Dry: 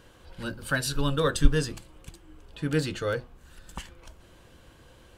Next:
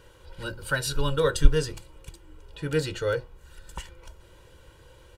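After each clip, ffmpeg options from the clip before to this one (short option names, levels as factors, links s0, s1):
-af "aecho=1:1:2.1:0.64,volume=0.891"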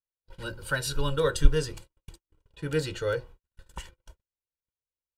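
-af "agate=range=0.00282:threshold=0.00794:ratio=16:detection=peak,volume=0.794"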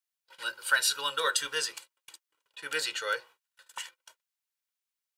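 -af "highpass=1200,volume=2.11"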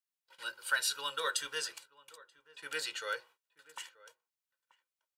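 -filter_complex "[0:a]asplit=2[s0][s1];[s1]adelay=932.9,volume=0.1,highshelf=f=4000:g=-21[s2];[s0][s2]amix=inputs=2:normalize=0,volume=0.501"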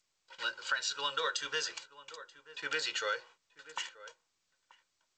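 -af "acompressor=threshold=0.0126:ratio=5,volume=2.37" -ar 16000 -c:a g722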